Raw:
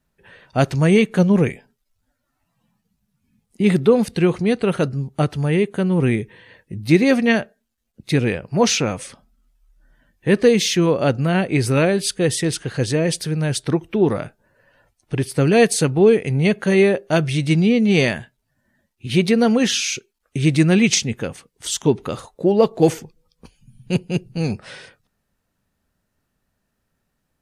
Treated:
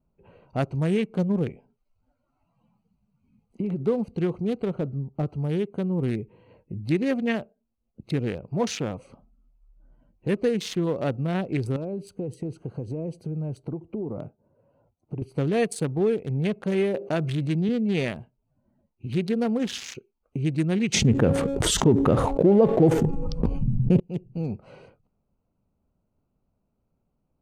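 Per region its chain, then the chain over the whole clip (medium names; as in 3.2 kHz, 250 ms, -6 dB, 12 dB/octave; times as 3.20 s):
1.47–3.81 s: treble shelf 8.7 kHz -9.5 dB + compression 12:1, threshold -16 dBFS + tape noise reduction on one side only encoder only
4.67–5.26 s: de-esser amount 95% + distance through air 62 m
11.76–15.22 s: high-pass 79 Hz + peaking EQ 3 kHz -9 dB 2.9 oct + compression 8:1, threshold -21 dBFS
16.94–17.69 s: high-pass 130 Hz + treble shelf 8.9 kHz -4 dB + level flattener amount 50%
20.94–24.00 s: tilt shelf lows +9.5 dB, about 1.4 kHz + de-hum 275.7 Hz, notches 29 + level flattener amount 70%
whole clip: local Wiener filter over 25 samples; compression 1.5:1, threshold -37 dBFS; dynamic bell 5.3 kHz, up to -4 dB, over -44 dBFS, Q 1.2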